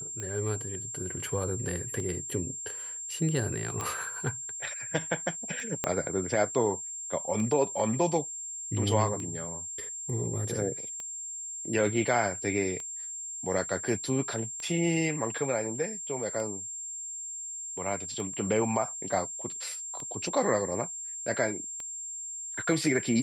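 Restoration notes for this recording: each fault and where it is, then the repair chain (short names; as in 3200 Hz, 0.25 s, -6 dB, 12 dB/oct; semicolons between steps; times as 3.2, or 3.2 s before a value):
tick 33 1/3 rpm -24 dBFS
tone 7400 Hz -36 dBFS
3.81 pop -18 dBFS
5.84 pop -11 dBFS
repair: de-click; notch 7400 Hz, Q 30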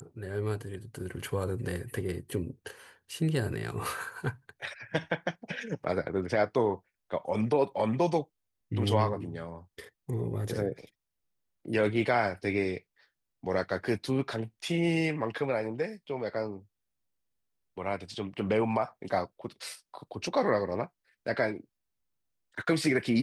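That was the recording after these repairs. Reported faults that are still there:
5.84 pop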